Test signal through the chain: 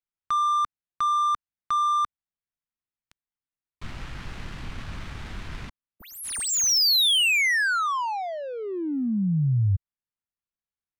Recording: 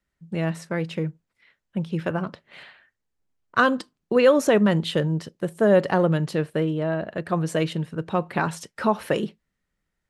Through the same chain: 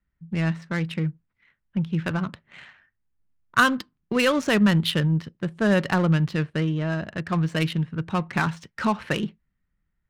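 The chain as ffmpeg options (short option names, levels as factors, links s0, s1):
-af "adynamicsmooth=sensitivity=5:basefreq=1700,equalizer=f=520:t=o:w=2:g=-14,volume=2.11"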